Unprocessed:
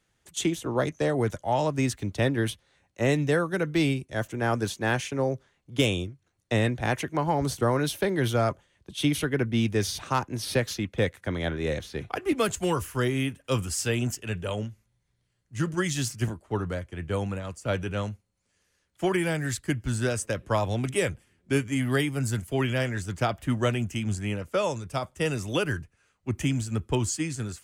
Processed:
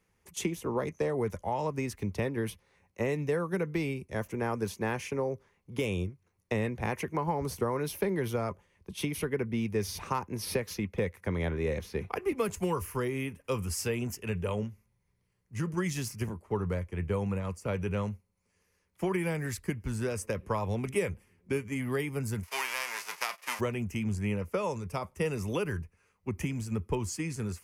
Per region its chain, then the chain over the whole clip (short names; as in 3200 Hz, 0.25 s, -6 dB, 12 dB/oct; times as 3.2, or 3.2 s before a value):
22.43–23.59 spectral whitening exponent 0.3 + HPF 890 Hz + air absorption 50 m
whole clip: bell 4500 Hz -7 dB 1.6 oct; compressor 3:1, threshold -29 dBFS; ripple EQ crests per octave 0.84, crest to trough 7 dB